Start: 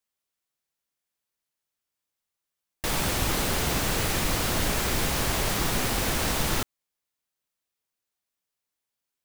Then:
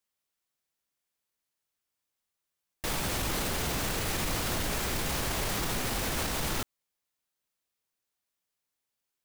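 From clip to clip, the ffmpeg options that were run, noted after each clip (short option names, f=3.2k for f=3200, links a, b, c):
-af "alimiter=limit=-22dB:level=0:latency=1:release=32"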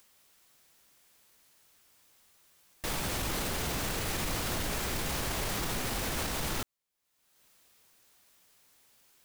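-af "acompressor=mode=upward:threshold=-43dB:ratio=2.5,volume=-2dB"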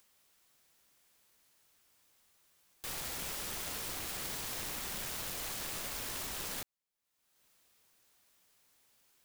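-af "aeval=exprs='(mod(29.9*val(0)+1,2)-1)/29.9':c=same,volume=-5.5dB"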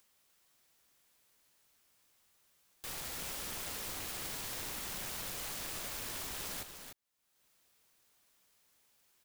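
-af "aecho=1:1:298:0.398,volume=-2dB"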